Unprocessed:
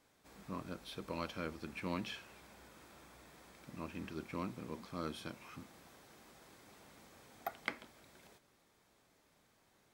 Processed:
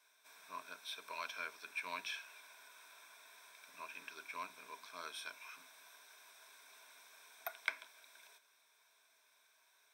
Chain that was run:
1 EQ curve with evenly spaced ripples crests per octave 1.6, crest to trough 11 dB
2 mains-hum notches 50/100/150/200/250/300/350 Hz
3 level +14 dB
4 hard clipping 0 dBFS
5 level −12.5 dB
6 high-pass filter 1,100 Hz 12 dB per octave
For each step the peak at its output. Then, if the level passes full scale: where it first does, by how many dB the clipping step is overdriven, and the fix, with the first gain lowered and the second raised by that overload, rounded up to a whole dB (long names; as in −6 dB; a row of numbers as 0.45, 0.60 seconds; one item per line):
−18.5, −18.5, −4.5, −4.5, −17.0, −17.0 dBFS
no step passes full scale